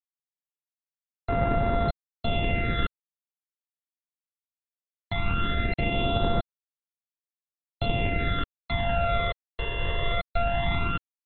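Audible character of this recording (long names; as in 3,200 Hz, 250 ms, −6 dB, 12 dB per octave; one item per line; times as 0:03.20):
a buzz of ramps at a fixed pitch in blocks of 64 samples
phaser sweep stages 12, 0.18 Hz, lowest notch 230–3,200 Hz
a quantiser's noise floor 8 bits, dither none
AAC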